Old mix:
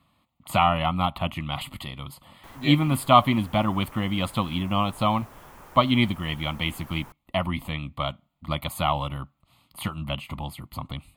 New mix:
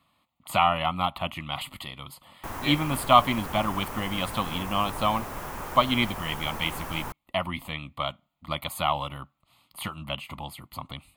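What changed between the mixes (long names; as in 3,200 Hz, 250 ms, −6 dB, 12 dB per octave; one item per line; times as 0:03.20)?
speech: add low-shelf EQ 330 Hz −8.5 dB
background +11.5 dB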